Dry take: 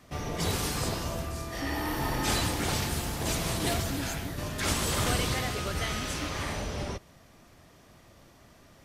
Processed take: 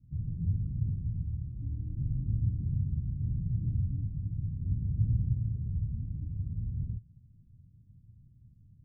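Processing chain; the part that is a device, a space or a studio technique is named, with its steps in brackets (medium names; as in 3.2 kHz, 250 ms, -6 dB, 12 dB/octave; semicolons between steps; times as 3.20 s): the neighbour's flat through the wall (low-pass 170 Hz 24 dB/octave; peaking EQ 110 Hz +8 dB 0.56 oct)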